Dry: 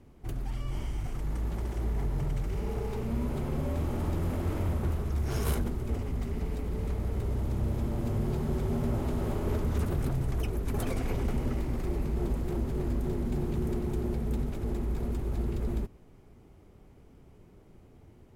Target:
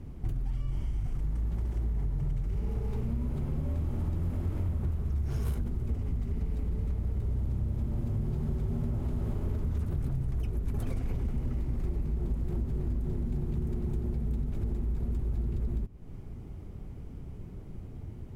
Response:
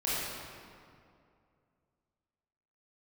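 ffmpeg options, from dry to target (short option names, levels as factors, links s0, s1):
-af "bass=f=250:g=11,treble=f=4000:g=-1,acompressor=threshold=0.0224:ratio=5,volume=1.5"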